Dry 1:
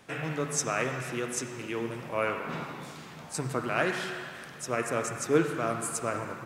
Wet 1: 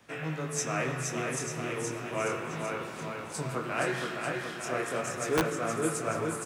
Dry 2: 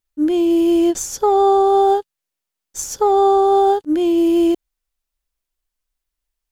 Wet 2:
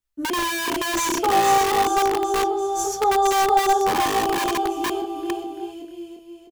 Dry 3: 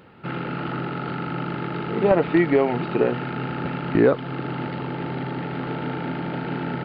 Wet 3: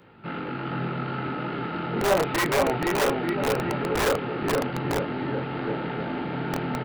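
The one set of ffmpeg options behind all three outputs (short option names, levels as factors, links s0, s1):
-filter_complex "[0:a]acrossover=split=370|3000[s0][s1][s2];[s0]acompressor=threshold=0.0794:ratio=2[s3];[s3][s1][s2]amix=inputs=3:normalize=0,flanger=delay=18:depth=7.6:speed=0.35,asplit=2[s4][s5];[s5]adelay=32,volume=0.211[s6];[s4][s6]amix=inputs=2:normalize=0,aecho=1:1:470|893|1274|1616|1925:0.631|0.398|0.251|0.158|0.1,acrossover=split=450|2300[s7][s8][s9];[s7]aeval=exprs='(mod(11.2*val(0)+1,2)-1)/11.2':c=same[s10];[s10][s8][s9]amix=inputs=3:normalize=0"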